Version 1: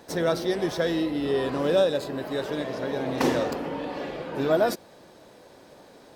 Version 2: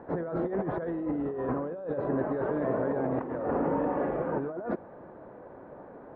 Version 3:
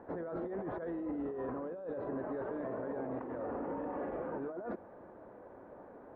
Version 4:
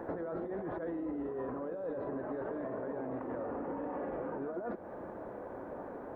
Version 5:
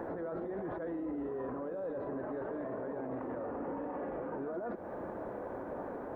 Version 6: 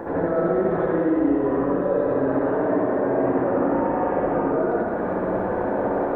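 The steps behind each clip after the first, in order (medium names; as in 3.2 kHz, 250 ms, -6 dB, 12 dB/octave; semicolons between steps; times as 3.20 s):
inverse Chebyshev low-pass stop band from 7.9 kHz, stop band 80 dB; compressor with a negative ratio -31 dBFS, ratio -1
peaking EQ 150 Hz -10.5 dB 0.26 oct; peak limiter -25.5 dBFS, peak gain reduction 8 dB; trim -5.5 dB
compression 10:1, threshold -44 dBFS, peak gain reduction 9.5 dB; on a send: reverse echo 173 ms -11 dB; on the sum: trim +8.5 dB
peak limiter -34.5 dBFS, peak gain reduction 8 dB; trim +3 dB
reverberation RT60 1.9 s, pre-delay 59 ms, DRR -10 dB; trim +7 dB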